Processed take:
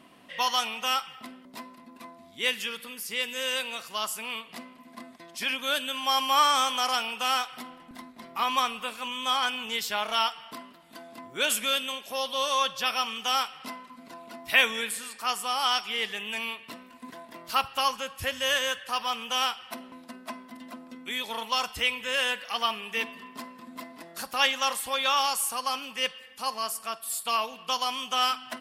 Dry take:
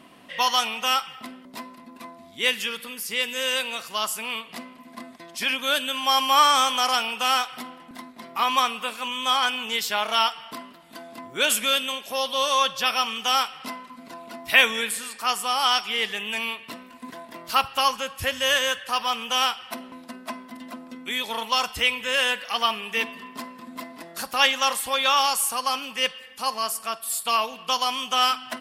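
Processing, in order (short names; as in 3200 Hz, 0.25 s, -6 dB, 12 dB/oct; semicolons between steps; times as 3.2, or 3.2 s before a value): 7.71–10.13 low shelf 94 Hz +9 dB; gain -4.5 dB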